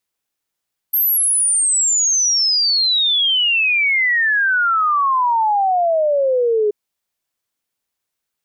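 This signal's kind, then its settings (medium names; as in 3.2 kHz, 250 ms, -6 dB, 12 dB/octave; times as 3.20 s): log sweep 13 kHz -> 410 Hz 5.78 s -13 dBFS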